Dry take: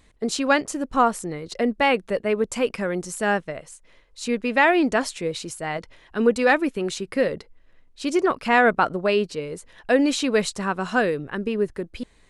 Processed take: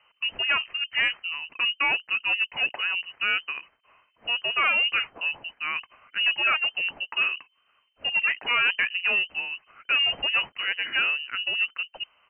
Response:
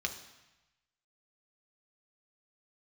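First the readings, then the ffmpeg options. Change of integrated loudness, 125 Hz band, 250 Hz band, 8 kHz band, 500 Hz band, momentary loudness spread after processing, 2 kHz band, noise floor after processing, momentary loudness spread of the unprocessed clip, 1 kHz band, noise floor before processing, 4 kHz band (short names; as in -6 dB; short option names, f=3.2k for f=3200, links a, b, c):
-1.5 dB, under -20 dB, -28.0 dB, under -40 dB, -22.0 dB, 10 LU, +2.5 dB, -69 dBFS, 14 LU, -9.5 dB, -56 dBFS, +8.5 dB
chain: -af "highpass=f=190:p=1,aresample=11025,asoftclip=type=tanh:threshold=-18dB,aresample=44100,lowpass=f=2.6k:t=q:w=0.5098,lowpass=f=2.6k:t=q:w=0.6013,lowpass=f=2.6k:t=q:w=0.9,lowpass=f=2.6k:t=q:w=2.563,afreqshift=-3100"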